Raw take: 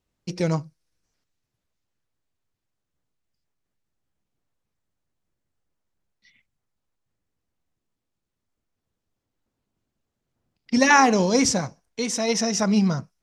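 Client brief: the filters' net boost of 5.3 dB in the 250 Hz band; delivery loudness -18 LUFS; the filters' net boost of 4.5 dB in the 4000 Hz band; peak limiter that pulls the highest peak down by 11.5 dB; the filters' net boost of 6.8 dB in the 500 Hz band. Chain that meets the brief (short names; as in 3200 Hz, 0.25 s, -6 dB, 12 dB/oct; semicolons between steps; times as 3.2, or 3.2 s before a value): bell 250 Hz +5 dB; bell 500 Hz +6.5 dB; bell 4000 Hz +6.5 dB; gain +3 dB; limiter -8 dBFS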